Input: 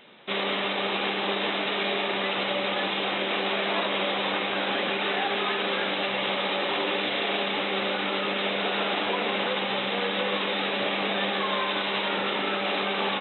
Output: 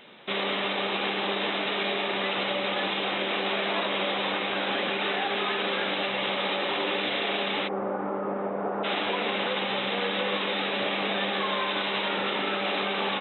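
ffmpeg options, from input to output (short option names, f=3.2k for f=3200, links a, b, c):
-filter_complex "[0:a]asplit=3[a][b][c];[a]afade=t=out:st=7.67:d=0.02[d];[b]lowpass=f=1.2k:w=0.5412,lowpass=f=1.2k:w=1.3066,afade=t=in:st=7.67:d=0.02,afade=t=out:st=8.83:d=0.02[e];[c]afade=t=in:st=8.83:d=0.02[f];[d][e][f]amix=inputs=3:normalize=0,asplit=2[g][h];[h]alimiter=limit=-23.5dB:level=0:latency=1:release=477,volume=0.5dB[i];[g][i]amix=inputs=2:normalize=0,volume=-4.5dB"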